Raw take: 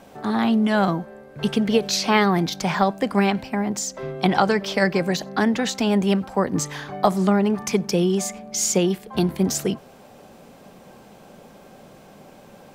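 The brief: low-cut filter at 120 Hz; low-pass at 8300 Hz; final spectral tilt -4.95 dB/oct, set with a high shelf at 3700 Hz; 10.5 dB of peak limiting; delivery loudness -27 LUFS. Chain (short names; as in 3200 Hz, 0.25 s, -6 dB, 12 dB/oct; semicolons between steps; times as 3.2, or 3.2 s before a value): HPF 120 Hz; LPF 8300 Hz; high shelf 3700 Hz -5.5 dB; gain -1 dB; limiter -16.5 dBFS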